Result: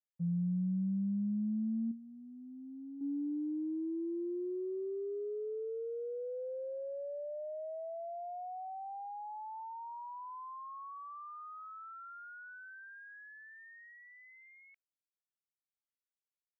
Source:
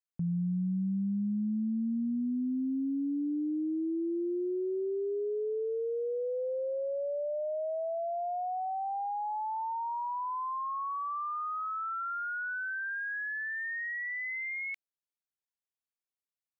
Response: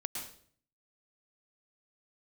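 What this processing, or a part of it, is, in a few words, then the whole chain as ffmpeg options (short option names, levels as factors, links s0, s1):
hearing-loss simulation: -filter_complex "[0:a]asettb=1/sr,asplit=3[s0][s1][s2];[s0]atrim=end=1.914[s3];[s1]atrim=start=1.91:end=3.01,asetpts=PTS-STARTPTS,afade=t=in:d=0.004:c=qsin,afade=t=out:st=1.096:d=0.004:c=qsin,equalizer=f=230:w=2.3:g=-5.5[s4];[s2]atrim=start=3.006[s5];[s3][s4]acrossfade=d=0.004:c1=hsin:c2=qsin[s6];[s6][s5]acrossfade=d=0.004:c1=qsin:c2=hsin,lowpass=2100,agate=range=0.0224:threshold=0.0562:ratio=3:detection=peak,volume=1.78"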